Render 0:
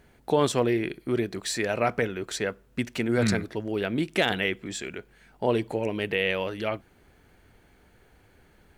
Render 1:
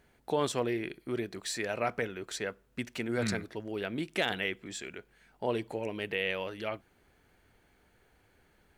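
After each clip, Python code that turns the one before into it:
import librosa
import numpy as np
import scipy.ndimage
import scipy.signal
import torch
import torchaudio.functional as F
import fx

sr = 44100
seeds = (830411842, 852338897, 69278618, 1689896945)

y = fx.low_shelf(x, sr, hz=400.0, db=-4.0)
y = y * 10.0 ** (-5.5 / 20.0)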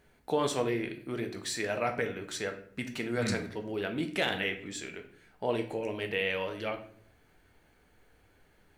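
y = fx.room_shoebox(x, sr, seeds[0], volume_m3=77.0, walls='mixed', distance_m=0.44)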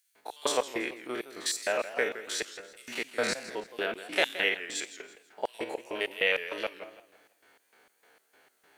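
y = fx.spec_steps(x, sr, hold_ms=50)
y = fx.filter_lfo_highpass(y, sr, shape='square', hz=3.3, low_hz=480.0, high_hz=6500.0, q=0.72)
y = fx.echo_warbled(y, sr, ms=165, feedback_pct=34, rate_hz=2.8, cents=178, wet_db=-13.5)
y = y * 10.0 ** (7.5 / 20.0)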